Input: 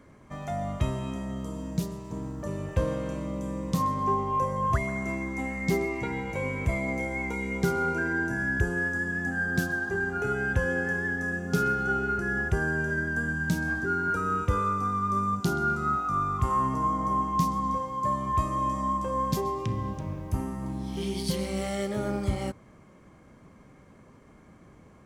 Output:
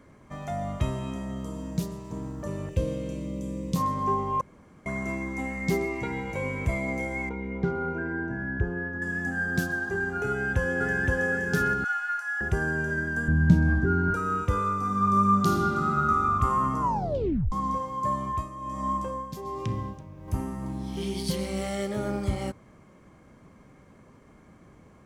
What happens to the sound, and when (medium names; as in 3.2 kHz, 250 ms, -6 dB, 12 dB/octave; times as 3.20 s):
2.69–3.76 s: high-order bell 1.1 kHz -12.5 dB
4.41–4.86 s: room tone
7.29–9.02 s: tape spacing loss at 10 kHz 37 dB
10.28–11.21 s: echo throw 520 ms, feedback 35%, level -1 dB
11.84–12.41 s: steep high-pass 890 Hz
13.28–14.14 s: RIAA curve playback
14.79–16.23 s: reverb throw, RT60 2.4 s, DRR -0.5 dB
16.81 s: tape stop 0.71 s
18.17–20.28 s: tremolo 1.3 Hz, depth 72%